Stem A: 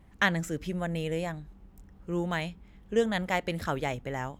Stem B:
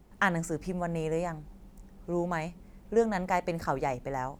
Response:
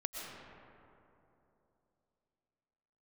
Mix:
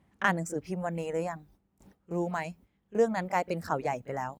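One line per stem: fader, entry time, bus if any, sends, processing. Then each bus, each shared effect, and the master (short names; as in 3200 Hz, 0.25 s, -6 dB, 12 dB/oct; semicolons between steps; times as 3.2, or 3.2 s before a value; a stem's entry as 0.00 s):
-5.5 dB, 0.00 s, no send, treble ducked by the level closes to 620 Hz, closed at -25 dBFS; auto duck -10 dB, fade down 0.65 s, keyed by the second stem
0.0 dB, 26 ms, polarity flipped, no send, gate with hold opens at -40 dBFS; reverb removal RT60 0.66 s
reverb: off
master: HPF 100 Hz 12 dB/oct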